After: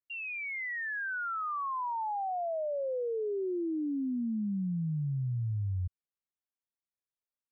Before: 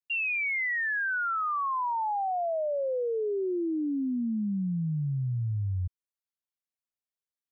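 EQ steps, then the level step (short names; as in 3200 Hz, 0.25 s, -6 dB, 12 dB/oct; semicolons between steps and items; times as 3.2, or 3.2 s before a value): air absorption 470 m; -2.5 dB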